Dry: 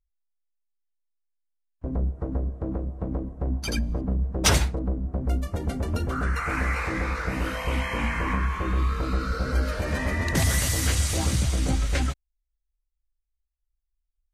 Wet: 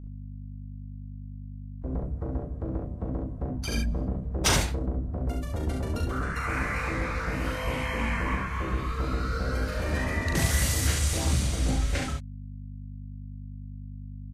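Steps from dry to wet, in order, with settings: hum 50 Hz, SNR 11 dB; early reflections 39 ms -5 dB, 68 ms -5 dB; trim -4 dB

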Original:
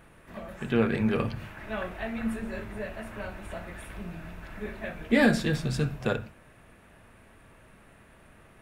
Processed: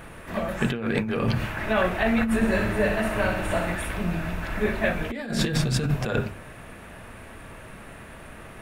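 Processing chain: hum notches 50/100/150/200/250/300/350/400 Hz; compressor with a negative ratio -33 dBFS, ratio -1; 2.35–3.75 s: flutter echo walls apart 10.9 m, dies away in 0.72 s; trim +9 dB

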